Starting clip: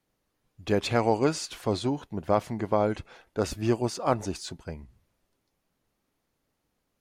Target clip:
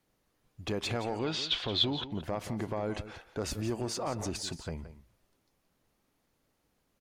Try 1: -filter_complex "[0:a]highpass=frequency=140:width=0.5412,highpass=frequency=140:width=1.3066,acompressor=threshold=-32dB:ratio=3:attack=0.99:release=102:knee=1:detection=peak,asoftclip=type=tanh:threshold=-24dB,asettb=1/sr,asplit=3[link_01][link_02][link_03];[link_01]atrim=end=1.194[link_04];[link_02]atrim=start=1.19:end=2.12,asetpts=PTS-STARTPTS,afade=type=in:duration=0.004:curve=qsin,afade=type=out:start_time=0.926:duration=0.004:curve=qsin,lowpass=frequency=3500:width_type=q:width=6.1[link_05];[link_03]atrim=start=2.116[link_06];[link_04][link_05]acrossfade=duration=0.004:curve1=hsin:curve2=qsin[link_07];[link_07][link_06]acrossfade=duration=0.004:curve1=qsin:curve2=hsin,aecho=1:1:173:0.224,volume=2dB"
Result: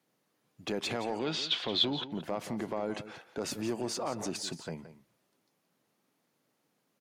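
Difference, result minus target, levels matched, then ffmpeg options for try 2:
125 Hz band −6.0 dB
-filter_complex "[0:a]acompressor=threshold=-32dB:ratio=3:attack=0.99:release=102:knee=1:detection=peak,asoftclip=type=tanh:threshold=-24dB,asettb=1/sr,asplit=3[link_01][link_02][link_03];[link_01]atrim=end=1.194[link_04];[link_02]atrim=start=1.19:end=2.12,asetpts=PTS-STARTPTS,afade=type=in:duration=0.004:curve=qsin,afade=type=out:start_time=0.926:duration=0.004:curve=qsin,lowpass=frequency=3500:width_type=q:width=6.1[link_05];[link_03]atrim=start=2.116[link_06];[link_04][link_05]acrossfade=duration=0.004:curve1=hsin:curve2=qsin[link_07];[link_07][link_06]acrossfade=duration=0.004:curve1=qsin:curve2=hsin,aecho=1:1:173:0.224,volume=2dB"

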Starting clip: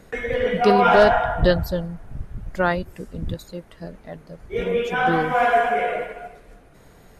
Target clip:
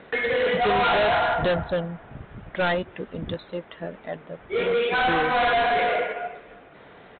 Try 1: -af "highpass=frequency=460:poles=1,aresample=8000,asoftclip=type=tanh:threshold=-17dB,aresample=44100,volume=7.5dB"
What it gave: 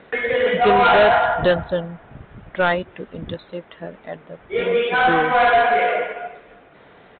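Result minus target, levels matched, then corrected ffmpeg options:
soft clipping: distortion −7 dB
-af "highpass=frequency=460:poles=1,aresample=8000,asoftclip=type=tanh:threshold=-26.5dB,aresample=44100,volume=7.5dB"

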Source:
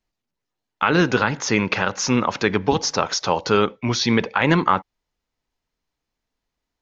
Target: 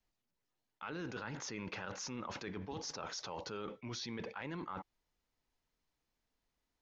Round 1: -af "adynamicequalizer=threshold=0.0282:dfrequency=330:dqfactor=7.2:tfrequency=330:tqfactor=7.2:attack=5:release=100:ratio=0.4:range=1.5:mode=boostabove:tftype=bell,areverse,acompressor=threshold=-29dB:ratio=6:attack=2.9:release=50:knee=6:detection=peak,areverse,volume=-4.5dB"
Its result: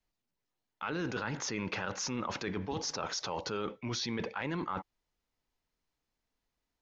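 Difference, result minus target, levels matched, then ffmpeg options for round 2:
downward compressor: peak gain reduction −7.5 dB
-af "adynamicequalizer=threshold=0.0282:dfrequency=330:dqfactor=7.2:tfrequency=330:tqfactor=7.2:attack=5:release=100:ratio=0.4:range=1.5:mode=boostabove:tftype=bell,areverse,acompressor=threshold=-38dB:ratio=6:attack=2.9:release=50:knee=6:detection=peak,areverse,volume=-4.5dB"

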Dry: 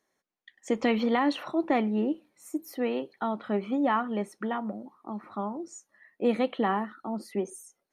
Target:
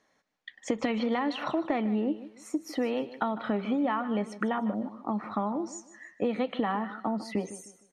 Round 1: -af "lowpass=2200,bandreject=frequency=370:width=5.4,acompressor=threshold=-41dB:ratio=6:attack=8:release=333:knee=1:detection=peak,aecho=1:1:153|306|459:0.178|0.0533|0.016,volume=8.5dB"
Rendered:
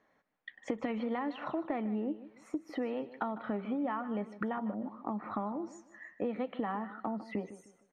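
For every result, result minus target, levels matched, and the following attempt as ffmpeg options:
4,000 Hz band −6.5 dB; downward compressor: peak gain reduction +6 dB
-af "lowpass=5600,bandreject=frequency=370:width=5.4,acompressor=threshold=-41dB:ratio=6:attack=8:release=333:knee=1:detection=peak,aecho=1:1:153|306|459:0.178|0.0533|0.016,volume=8.5dB"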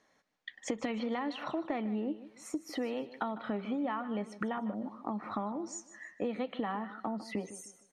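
downward compressor: peak gain reduction +6 dB
-af "lowpass=5600,bandreject=frequency=370:width=5.4,acompressor=threshold=-33.5dB:ratio=6:attack=8:release=333:knee=1:detection=peak,aecho=1:1:153|306|459:0.178|0.0533|0.016,volume=8.5dB"

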